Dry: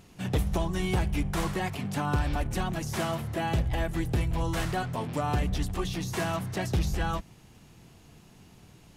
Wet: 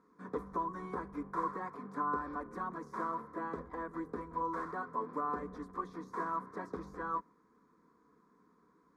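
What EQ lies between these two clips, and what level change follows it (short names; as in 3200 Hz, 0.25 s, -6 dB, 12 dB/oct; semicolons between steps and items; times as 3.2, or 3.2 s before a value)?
dynamic EQ 700 Hz, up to +6 dB, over -43 dBFS, Q 0.8; double band-pass 630 Hz, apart 1.3 oct; fixed phaser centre 570 Hz, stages 8; +6.0 dB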